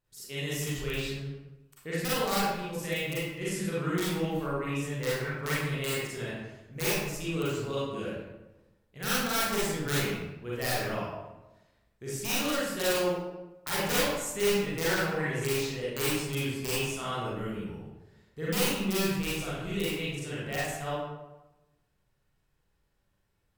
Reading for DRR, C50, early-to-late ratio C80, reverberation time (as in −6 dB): −9.0 dB, −3.5 dB, 1.0 dB, 1.0 s